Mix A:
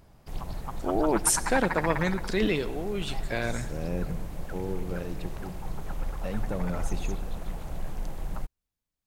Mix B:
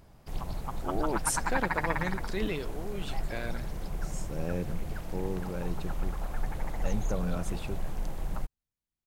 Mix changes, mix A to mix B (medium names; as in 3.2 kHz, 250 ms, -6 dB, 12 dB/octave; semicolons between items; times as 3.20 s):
first voice -6.5 dB; second voice: entry +0.60 s; reverb: off